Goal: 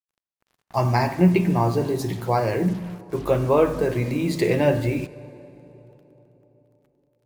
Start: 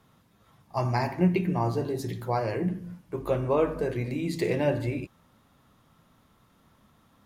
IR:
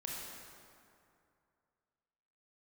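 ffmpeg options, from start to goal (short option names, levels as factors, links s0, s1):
-filter_complex "[0:a]acrusher=bits=7:mix=0:aa=0.5,asplit=2[s0][s1];[1:a]atrim=start_sample=2205,asetrate=26019,aresample=44100[s2];[s1][s2]afir=irnorm=-1:irlink=0,volume=0.106[s3];[s0][s3]amix=inputs=2:normalize=0,volume=1.88"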